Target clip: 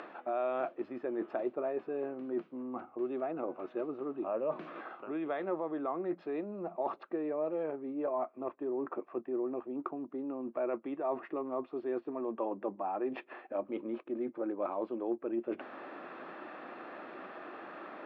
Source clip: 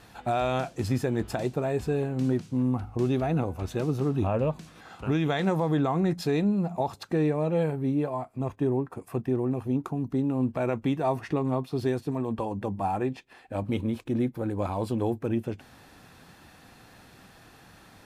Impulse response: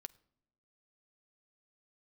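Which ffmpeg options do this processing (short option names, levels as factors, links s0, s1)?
-af "areverse,acompressor=threshold=0.01:ratio=12,areverse,highpass=f=250:w=0.5412,highpass=f=250:w=1.3066,equalizer=f=350:t=q:w=4:g=9,equalizer=f=600:t=q:w=4:g=10,equalizer=f=1200:t=q:w=4:g=9,lowpass=f=2600:w=0.5412,lowpass=f=2600:w=1.3066,acompressor=mode=upward:threshold=0.00447:ratio=2.5,volume=1.58"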